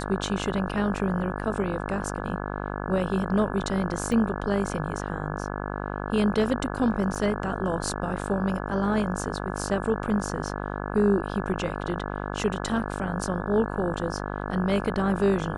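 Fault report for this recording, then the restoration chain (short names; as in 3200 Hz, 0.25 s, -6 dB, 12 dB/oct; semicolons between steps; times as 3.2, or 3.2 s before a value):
buzz 50 Hz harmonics 34 -32 dBFS
4.12 gap 2.2 ms
7.15–7.16 gap 6.5 ms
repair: de-hum 50 Hz, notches 34; interpolate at 4.12, 2.2 ms; interpolate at 7.15, 6.5 ms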